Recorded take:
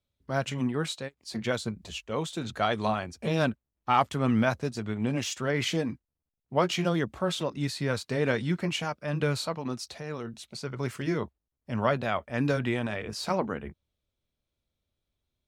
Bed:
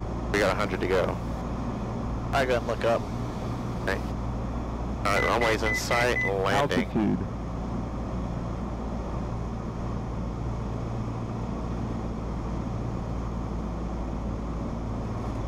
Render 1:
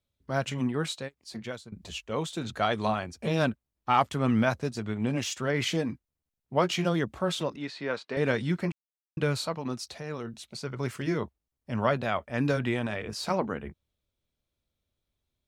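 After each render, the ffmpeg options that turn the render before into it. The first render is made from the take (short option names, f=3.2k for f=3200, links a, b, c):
-filter_complex "[0:a]asettb=1/sr,asplit=3[a][b][c];[a]atrim=end=7.564[d];[b]atrim=start=7.56:end=8.17,asetpts=PTS-STARTPTS,afade=t=in:d=0.004:c=qsin,afade=t=out:st=0.606:d=0.004:c=qsin,highpass=310,lowpass=3.3k[e];[c]atrim=start=8.166[f];[d][e]acrossfade=d=0.004:c1=hsin:c2=qsin[g];[g][f]acrossfade=d=0.004:c1=qsin:c2=hsin,asplit=4[h][i][j][k];[h]atrim=end=1.72,asetpts=PTS-STARTPTS,afade=t=out:st=1.02:d=0.7:silence=0.112202[l];[i]atrim=start=1.72:end=8.72,asetpts=PTS-STARTPTS,afade=t=in:d=0.004:c=hsin:silence=0.112202,afade=t=out:st=6.996:d=0.004:c=hsin[m];[j]atrim=start=8.72:end=9.17,asetpts=PTS-STARTPTS,volume=0[n];[k]atrim=start=9.17,asetpts=PTS-STARTPTS,afade=t=in:d=0.004:c=hsin[o];[l][m][n][o]concat=n=4:v=0:a=1"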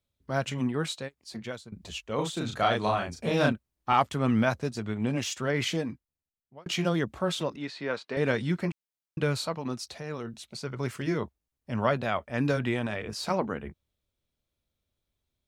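-filter_complex "[0:a]asettb=1/sr,asplit=3[a][b][c];[a]atrim=end=2.154[d];[b]atrim=start=2.15:end=3.93,asetpts=PTS-STARTPTS,afade=t=in:d=0.004:c=qsin,afade=t=out:st=1.776:d=0.004:c=qsin,asplit=2[e][f];[f]adelay=35,volume=-2dB[g];[e][g]amix=inputs=2:normalize=0,atrim=end_sample=78498[h];[c]atrim=start=3.926[i];[d][h]acrossfade=d=0.004:c1=hsin:c2=qsin[j];[j][i]acrossfade=d=0.004:c1=qsin:c2=hsin,asplit=2[k][l];[k]atrim=end=6.66,asetpts=PTS-STARTPTS,afade=t=out:st=5.62:d=1.04[m];[l]atrim=start=6.66,asetpts=PTS-STARTPTS,afade=t=in:d=0.004:c=hsin[n];[m][n]concat=n=2:v=0:a=1"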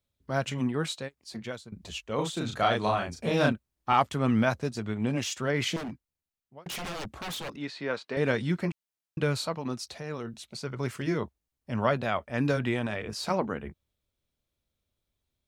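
-filter_complex "[0:a]asettb=1/sr,asplit=3[a][b][c];[a]atrim=end=5.764[d];[b]atrim=start=5.76:end=7.54,asetpts=PTS-STARTPTS,afade=t=in:d=0.004:c=qsin,afade=t=out:st=1.776:d=0.004:c=qsin,aeval=exprs='0.0282*(abs(mod(val(0)/0.0282+3,4)-2)-1)':c=same[e];[c]atrim=start=7.536[f];[d][e]acrossfade=d=0.004:c1=hsin:c2=qsin[g];[g][f]acrossfade=d=0.004:c1=qsin:c2=hsin"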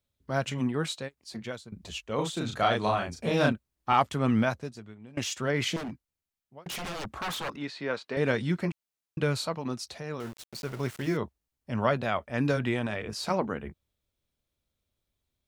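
-filter_complex "[0:a]asettb=1/sr,asplit=3[a][b][c];[a]atrim=end=7.044[d];[b]atrim=start=7.04:end=7.63,asetpts=PTS-STARTPTS,afade=t=in:d=0.004:c=qsin,afade=t=out:st=0.586:d=0.004:c=qsin,equalizer=f=1.2k:t=o:w=1.4:g=7.5[e];[c]atrim=start=7.626[f];[d][e]acrossfade=d=0.004:c1=hsin:c2=qsin[g];[g][f]acrossfade=d=0.004:c1=qsin:c2=hsin,asettb=1/sr,asplit=3[h][i][j];[h]atrim=end=10.204[k];[i]atrim=start=10.2:end=11.17,asetpts=PTS-STARTPTS,afade=t=in:d=0.004:c=qsin,afade=t=out:st=0.966:d=0.004:c=qsin,aeval=exprs='val(0)*gte(abs(val(0)),0.00891)':c=same[l];[j]atrim=start=11.166[m];[k][l]acrossfade=d=0.004:c1=hsin:c2=qsin[n];[n][m]acrossfade=d=0.004:c1=qsin:c2=hsin,asplit=2[o][p];[o]atrim=end=5.17,asetpts=PTS-STARTPTS,afade=t=out:st=4.39:d=0.78:c=qua:silence=0.0841395[q];[p]atrim=start=5.17,asetpts=PTS-STARTPTS,afade=t=in:d=0.004:c=hsin:silence=0.0841395[r];[q][r]concat=n=2:v=0:a=1"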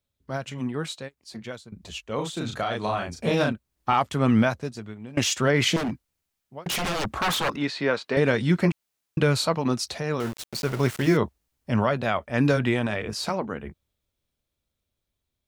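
-af "alimiter=limit=-18.5dB:level=0:latency=1:release=362,dynaudnorm=f=630:g=11:m=9dB"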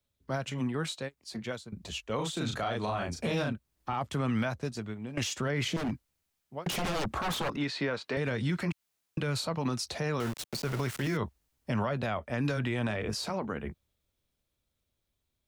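-filter_complex "[0:a]acrossover=split=150|870[a][b][c];[a]acompressor=threshold=-33dB:ratio=4[d];[b]acompressor=threshold=-31dB:ratio=4[e];[c]acompressor=threshold=-34dB:ratio=4[f];[d][e][f]amix=inputs=3:normalize=0,alimiter=limit=-22dB:level=0:latency=1:release=46"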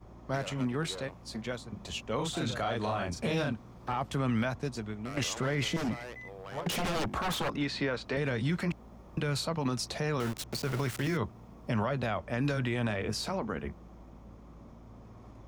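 -filter_complex "[1:a]volume=-19.5dB[a];[0:a][a]amix=inputs=2:normalize=0"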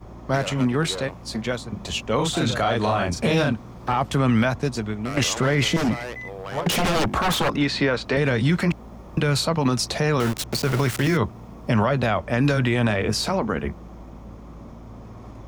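-af "volume=10.5dB"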